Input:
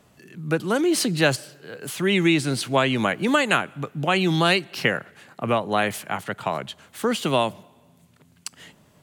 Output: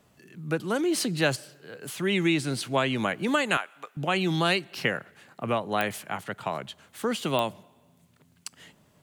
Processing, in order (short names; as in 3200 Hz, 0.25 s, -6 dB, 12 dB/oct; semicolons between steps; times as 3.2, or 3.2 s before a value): bit-crush 12-bit; 3.57–3.97 HPF 750 Hz 12 dB/oct; pops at 5.81/7.39, -8 dBFS; gain -5 dB